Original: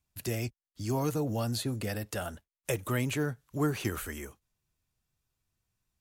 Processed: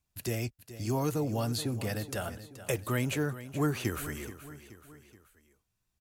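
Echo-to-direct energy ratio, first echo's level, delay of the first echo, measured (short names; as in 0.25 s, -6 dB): -13.0 dB, -14.0 dB, 0.427 s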